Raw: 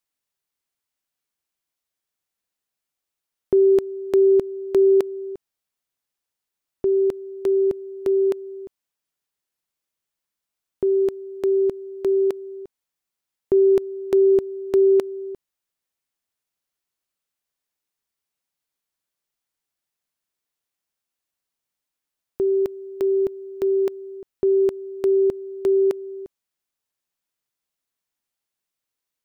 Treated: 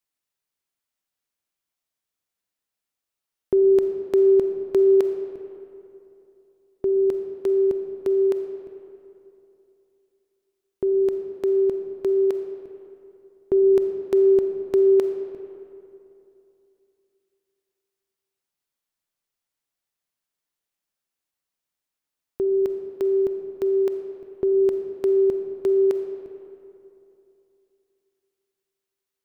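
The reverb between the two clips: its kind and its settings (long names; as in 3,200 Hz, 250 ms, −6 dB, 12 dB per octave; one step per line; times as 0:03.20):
comb and all-pass reverb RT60 2.9 s, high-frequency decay 0.55×, pre-delay 5 ms, DRR 6.5 dB
level −2 dB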